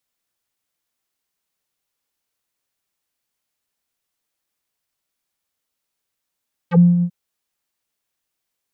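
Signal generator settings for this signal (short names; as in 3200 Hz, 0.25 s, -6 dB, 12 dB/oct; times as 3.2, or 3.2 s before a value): synth note square F3 12 dB/oct, low-pass 200 Hz, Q 3, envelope 4.5 oct, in 0.06 s, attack 41 ms, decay 0.21 s, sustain -9 dB, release 0.07 s, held 0.32 s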